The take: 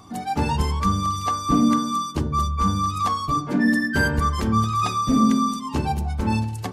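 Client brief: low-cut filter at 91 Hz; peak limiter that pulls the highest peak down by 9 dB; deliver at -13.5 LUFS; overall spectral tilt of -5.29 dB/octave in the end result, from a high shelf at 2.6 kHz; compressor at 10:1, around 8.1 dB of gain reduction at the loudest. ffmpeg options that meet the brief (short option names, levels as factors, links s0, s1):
-af "highpass=91,highshelf=f=2600:g=-5,acompressor=threshold=0.0794:ratio=10,volume=7.08,alimiter=limit=0.501:level=0:latency=1"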